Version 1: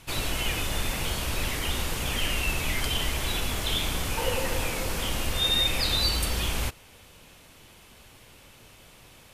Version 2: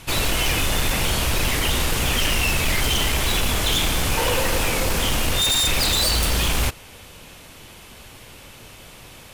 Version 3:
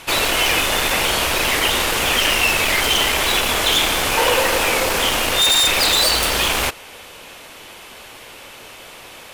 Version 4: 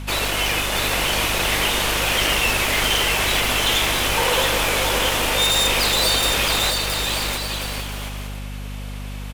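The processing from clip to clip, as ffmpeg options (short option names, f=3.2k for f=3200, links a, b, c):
-af "aeval=exprs='0.0668*(abs(mod(val(0)/0.0668+3,4)-2)-1)':c=same,volume=9dB"
-af "bass=f=250:g=-15,treble=f=4k:g=-4,volume=7dB"
-af "aecho=1:1:670|1106|1389|1573|1692:0.631|0.398|0.251|0.158|0.1,aeval=exprs='val(0)+0.0562*(sin(2*PI*50*n/s)+sin(2*PI*2*50*n/s)/2+sin(2*PI*3*50*n/s)/3+sin(2*PI*4*50*n/s)/4+sin(2*PI*5*50*n/s)/5)':c=same,volume=-4.5dB"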